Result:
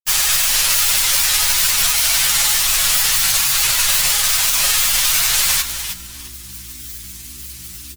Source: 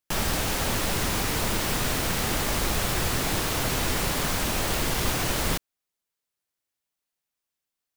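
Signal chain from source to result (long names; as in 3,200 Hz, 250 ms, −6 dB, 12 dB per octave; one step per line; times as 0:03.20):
in parallel at −4.5 dB: bit-depth reduction 8 bits, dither triangular
on the sum: guitar amp tone stack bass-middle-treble 10-0-10
comb filter 7.2 ms, depth 96%
on a send: repeating echo 371 ms, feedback 25%, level −12 dB
on the sum: upward compression, threshold −37 dBFS
spectral tilt +2 dB per octave
hum with harmonics 60 Hz, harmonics 6, −47 dBFS −7 dB per octave
granular cloud 100 ms, pitch spread up and down by 0 semitones
boost into a limiter +12.5 dB
string-ensemble chorus
level −1 dB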